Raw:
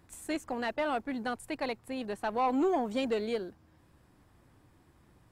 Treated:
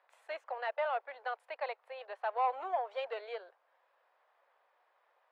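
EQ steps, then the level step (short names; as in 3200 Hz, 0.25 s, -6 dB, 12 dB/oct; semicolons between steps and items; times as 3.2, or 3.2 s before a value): steep high-pass 520 Hz 48 dB/oct; air absorption 350 m; 0.0 dB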